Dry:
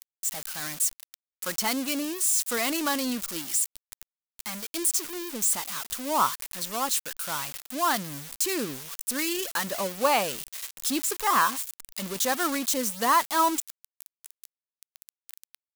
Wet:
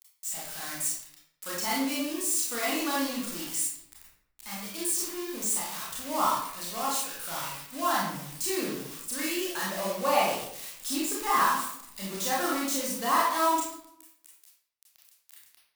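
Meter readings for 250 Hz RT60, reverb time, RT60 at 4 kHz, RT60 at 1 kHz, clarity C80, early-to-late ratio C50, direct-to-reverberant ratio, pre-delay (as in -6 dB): 0.85 s, 0.70 s, 0.50 s, 0.65 s, 4.5 dB, 0.0 dB, -6.0 dB, 25 ms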